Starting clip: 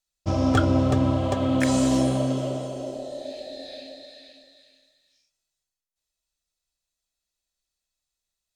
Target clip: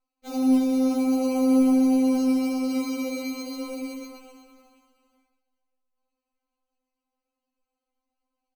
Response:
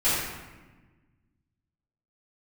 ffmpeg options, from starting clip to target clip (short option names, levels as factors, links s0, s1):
-filter_complex "[0:a]asplit=3[s0][s1][s2];[s0]afade=t=out:st=0.94:d=0.02[s3];[s1]highpass=f=210:w=0.5412,highpass=f=210:w=1.3066,afade=t=in:st=0.94:d=0.02,afade=t=out:st=2.15:d=0.02[s4];[s2]afade=t=in:st=2.15:d=0.02[s5];[s3][s4][s5]amix=inputs=3:normalize=0,asettb=1/sr,asplit=3[s6][s7][s8];[s6]atrim=end=2.704[s9];[s7]atrim=start=2.7:end=4.06,asetpts=PTS-STARTPTS,afade=t=in:d=0.004:c=qsin,afade=t=out:st=1.356:d=0.004:c=qsin,equalizer=f=350:t=o:w=1.4:g=12[s10];[s8]atrim=start=4.056[s11];[s9][s10]acrossfade=d=0.004:c1=hsin:c2=qsin[s12];[s12][s11]acrossfade=d=0.004:c1=qsin:c2=hsin,asplit=2[s13][s14];[s14]acompressor=threshold=0.0178:ratio=6,volume=1[s15];[s13][s15]amix=inputs=2:normalize=0,alimiter=limit=0.158:level=0:latency=1:release=36,flanger=delay=6.5:depth=2.3:regen=89:speed=0.48:shape=triangular,acrusher=samples=25:mix=1:aa=0.000001,aecho=1:1:123:0.376,afftfilt=real='re*3.46*eq(mod(b,12),0)':imag='im*3.46*eq(mod(b,12),0)':win_size=2048:overlap=0.75"